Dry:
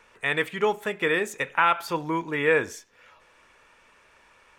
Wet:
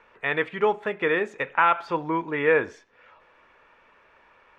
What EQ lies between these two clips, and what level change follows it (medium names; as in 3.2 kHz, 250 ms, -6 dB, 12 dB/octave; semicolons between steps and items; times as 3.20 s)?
low-pass 3.9 kHz 12 dB/octave; bass shelf 280 Hz -7 dB; treble shelf 2.5 kHz -11 dB; +4.0 dB